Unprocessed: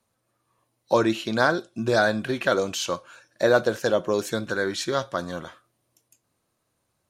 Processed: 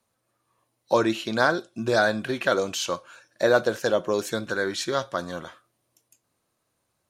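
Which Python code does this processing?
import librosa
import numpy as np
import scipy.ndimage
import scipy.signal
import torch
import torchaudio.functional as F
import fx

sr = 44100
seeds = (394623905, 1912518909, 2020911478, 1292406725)

y = fx.low_shelf(x, sr, hz=250.0, db=-3.5)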